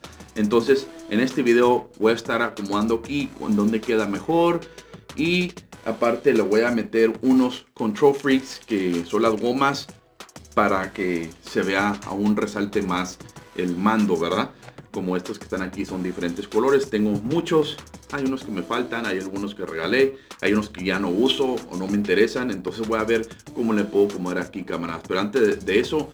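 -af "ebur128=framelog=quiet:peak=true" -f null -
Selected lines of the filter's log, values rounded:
Integrated loudness:
  I:         -22.7 LUFS
  Threshold: -33.0 LUFS
Loudness range:
  LRA:         3.8 LU
  Threshold: -43.1 LUFS
  LRA low:   -24.9 LUFS
  LRA high:  -21.0 LUFS
True peak:
  Peak:       -3.7 dBFS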